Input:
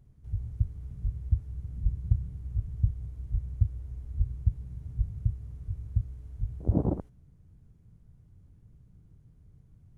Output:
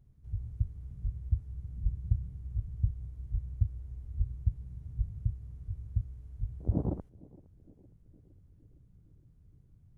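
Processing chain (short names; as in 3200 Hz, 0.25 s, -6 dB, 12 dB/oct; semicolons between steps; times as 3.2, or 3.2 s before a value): low shelf 200 Hz +3.5 dB; narrowing echo 0.462 s, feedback 64%, band-pass 330 Hz, level -21 dB; gain -6.5 dB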